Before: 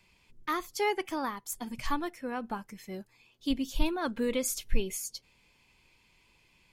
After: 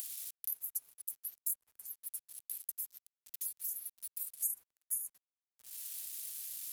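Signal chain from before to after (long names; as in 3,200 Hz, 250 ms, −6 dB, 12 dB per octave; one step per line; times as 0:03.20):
inverse Chebyshev high-pass filter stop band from 2,900 Hz, stop band 70 dB
transient designer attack +7 dB, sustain −12 dB
in parallel at −1 dB: upward compression, threshold −51 dBFS
on the sum: bit reduction 11 bits
multiband upward and downward compressor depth 100%
level +4 dB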